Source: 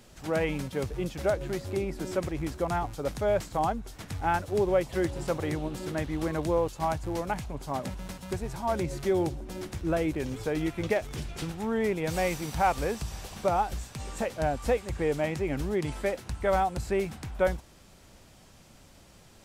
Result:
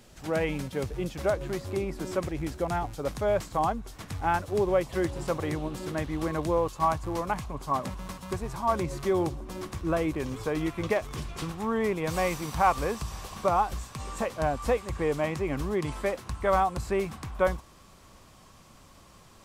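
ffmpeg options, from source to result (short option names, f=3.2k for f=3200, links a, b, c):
-af "asetnsamples=n=441:p=0,asendcmd='1.17 equalizer g 7.5;2.26 equalizer g -3;3 equalizer g 6.5;6.65 equalizer g 13.5',equalizer=f=1.1k:t=o:w=0.24:g=0"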